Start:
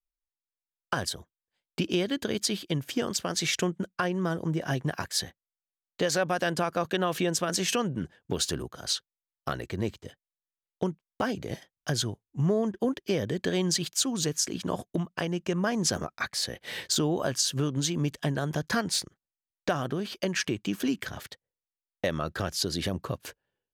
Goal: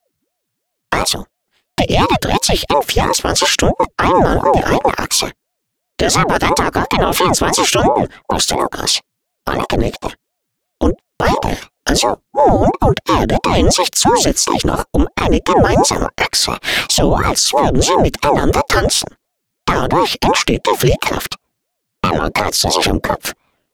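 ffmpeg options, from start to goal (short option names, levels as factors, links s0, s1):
-af "alimiter=level_in=15.8:limit=0.891:release=50:level=0:latency=1,aeval=exprs='val(0)*sin(2*PI*420*n/s+420*0.75/2.9*sin(2*PI*2.9*n/s))':c=same"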